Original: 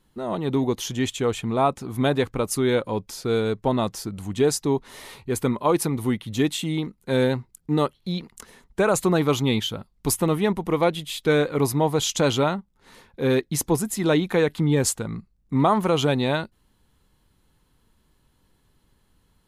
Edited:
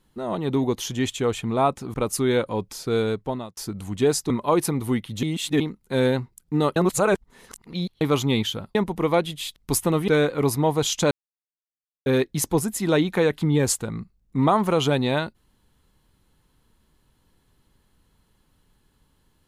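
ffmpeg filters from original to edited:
-filter_complex "[0:a]asplit=13[a][b][c][d][e][f][g][h][i][j][k][l][m];[a]atrim=end=1.942[n];[b]atrim=start=2.318:end=3.95,asetpts=PTS-STARTPTS,afade=t=out:st=1.132:d=0.5[o];[c]atrim=start=3.95:end=4.682,asetpts=PTS-STARTPTS,afade=t=in:d=0.004:c=hsin[p];[d]atrim=start=5.468:end=6.402[q];[e]atrim=start=6.398:end=6.772,asetpts=PTS-STARTPTS,areverse[r];[f]atrim=start=6.768:end=7.932[s];[g]atrim=start=7.928:end=9.182,asetpts=PTS-STARTPTS,areverse[t];[h]atrim=start=9.178:end=9.922[u];[i]atrim=start=10.438:end=11.252[v];[j]atrim=start=9.918:end=10.442[w];[k]atrim=start=11.248:end=12.28,asetpts=PTS-STARTPTS,afade=t=out:st=1.028:d=0.004:c=hsin[x];[l]atrim=start=12.28:end=13.23,asetpts=PTS-STARTPTS,volume=0[y];[m]atrim=start=13.23,asetpts=PTS-STARTPTS,afade=t=in:d=0.004:c=hsin[z];[o][p]concat=n=2:v=0:a=1[aa];[n][aa]acrossfade=d=0.004:c1=hsin:c2=hsin[ab];[ab][q]acrossfade=d=0.004:c1=hsin:c2=hsin[ac];[ac][r]acrossfade=d=0.004:c1=hsin:c2=hsin[ad];[ad][s]acrossfade=d=0.004:c1=hsin:c2=hsin[ae];[ae][t]acrossfade=d=0.004:c1=hsin:c2=hsin[af];[af][u]acrossfade=d=0.004:c1=hsin:c2=hsin[ag];[ag][v]acrossfade=d=0.004:c1=hsin:c2=hsin[ah];[ah][w]acrossfade=d=0.004:c1=hsin:c2=hsin[ai];[x][y][z]concat=n=3:v=0:a=1[aj];[ai][aj]acrossfade=d=0.004:c1=hsin:c2=hsin"

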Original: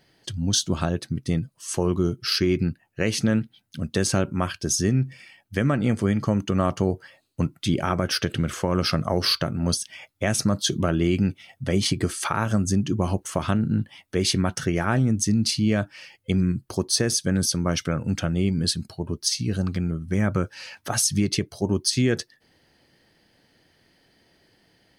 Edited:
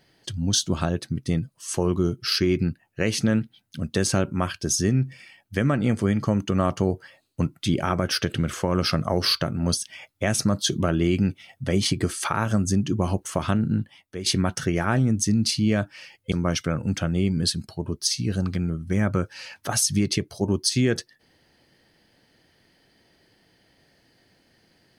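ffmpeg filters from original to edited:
-filter_complex "[0:a]asplit=3[a][b][c];[a]atrim=end=14.26,asetpts=PTS-STARTPTS,afade=t=out:st=13.73:d=0.53:c=qua:silence=0.316228[d];[b]atrim=start=14.26:end=16.322,asetpts=PTS-STARTPTS,afade=t=in:d=0.004:c=hsin:silence=0.316228[e];[c]atrim=start=17.528[f];[d][e]concat=n=2:v=0:a=1[g];[g][f]acrossfade=d=0.004:c1=hsin:c2=hsin"

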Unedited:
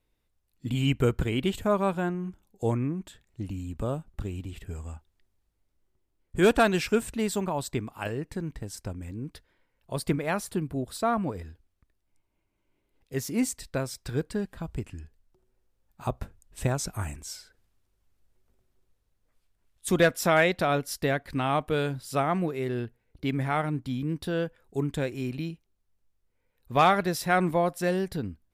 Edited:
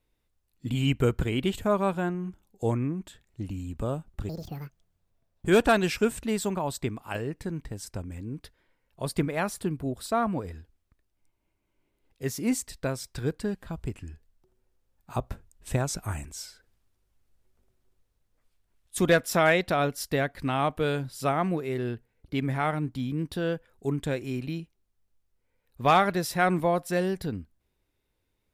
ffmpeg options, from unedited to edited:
-filter_complex "[0:a]asplit=3[a][b][c];[a]atrim=end=4.294[d];[b]atrim=start=4.29:end=6.36,asetpts=PTS-STARTPTS,asetrate=78498,aresample=44100[e];[c]atrim=start=6.356[f];[d][e]acrossfade=d=0.004:c1=hsin:c2=hsin[g];[g][f]acrossfade=d=0.004:c1=hsin:c2=hsin"

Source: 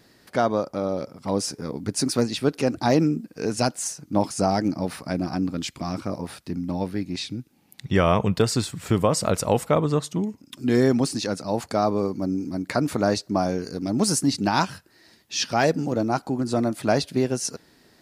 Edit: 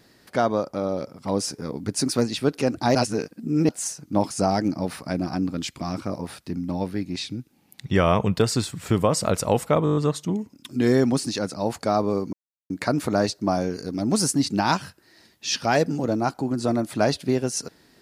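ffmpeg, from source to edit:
-filter_complex "[0:a]asplit=11[a][b][c][d][e][f][g][h][i][j][k];[a]atrim=end=2.952[l];[b]atrim=start=2.948:end=3.692,asetpts=PTS-STARTPTS,areverse[m];[c]atrim=start=3.688:end=9.862[n];[d]atrim=start=9.838:end=9.862[o];[e]atrim=start=9.838:end=9.862[p];[f]atrim=start=9.838:end=9.862[q];[g]atrim=start=9.838:end=9.862[r];[h]atrim=start=9.838:end=9.862[s];[i]atrim=start=9.838:end=12.21,asetpts=PTS-STARTPTS,afade=t=out:st=2.368:d=0.004:c=hsin[t];[j]atrim=start=12.21:end=12.58,asetpts=PTS-STARTPTS,volume=0[u];[k]atrim=start=12.58,asetpts=PTS-STARTPTS,afade=t=in:d=0.004:c=hsin[v];[l][m]acrossfade=d=0.004:c1=hsin:c2=hsin[w];[w][n]acrossfade=d=0.004:c1=hsin:c2=hsin[x];[x][o]acrossfade=d=0.004:c1=hsin:c2=hsin[y];[y][p]acrossfade=d=0.004:c1=hsin:c2=hsin[z];[z][q]acrossfade=d=0.004:c1=hsin:c2=hsin[aa];[aa][r]acrossfade=d=0.004:c1=hsin:c2=hsin[ab];[ab][s]acrossfade=d=0.004:c1=hsin:c2=hsin[ac];[t][u][v]concat=n=3:v=0:a=1[ad];[ac][ad]acrossfade=d=0.004:c1=hsin:c2=hsin"

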